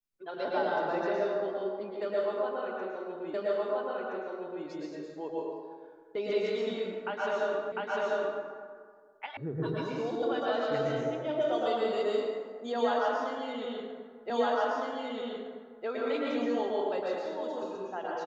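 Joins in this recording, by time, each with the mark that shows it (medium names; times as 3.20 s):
3.34 s: repeat of the last 1.32 s
7.72 s: repeat of the last 0.7 s
9.37 s: sound stops dead
14.30 s: repeat of the last 1.56 s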